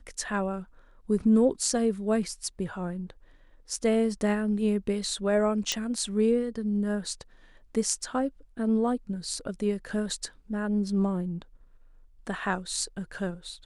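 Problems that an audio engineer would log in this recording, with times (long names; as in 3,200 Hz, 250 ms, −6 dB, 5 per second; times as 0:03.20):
0:05.72: click −11 dBFS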